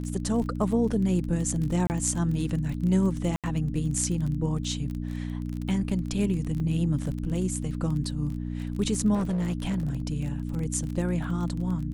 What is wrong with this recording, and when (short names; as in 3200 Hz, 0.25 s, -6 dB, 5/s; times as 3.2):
crackle 25/s -32 dBFS
hum 60 Hz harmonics 5 -32 dBFS
1.87–1.9 gap 29 ms
3.36–3.44 gap 77 ms
6.6 gap 2.3 ms
9.14–10.02 clipped -23.5 dBFS